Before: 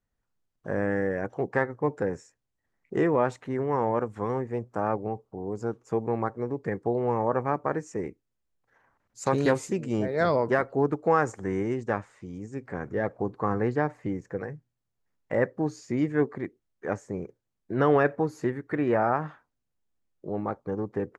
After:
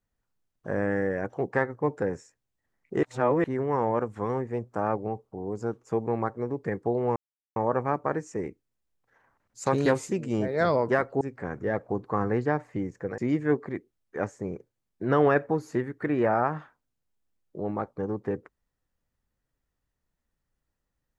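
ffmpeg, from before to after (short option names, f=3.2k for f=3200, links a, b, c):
-filter_complex "[0:a]asplit=6[a][b][c][d][e][f];[a]atrim=end=3.032[g];[b]atrim=start=3.028:end=3.442,asetpts=PTS-STARTPTS,areverse[h];[c]atrim=start=3.438:end=7.16,asetpts=PTS-STARTPTS,afade=t=out:st=3.718:d=0.004:c=hsin,apad=pad_dur=0.4[i];[d]atrim=start=7.16:end=10.812,asetpts=PTS-STARTPTS,afade=t=in:d=0.004:c=hsin[j];[e]atrim=start=12.508:end=14.482[k];[f]atrim=start=15.868[l];[g][h]acrossfade=d=0.004:c1=hsin:c2=hsin[m];[i][j]concat=n=2:v=0:a=1[n];[m][n]acrossfade=d=0.004:c1=hsin:c2=hsin[o];[o][k]acrossfade=d=0.004:c1=hsin:c2=hsin[p];[p][l]acrossfade=d=0.004:c1=hsin:c2=hsin"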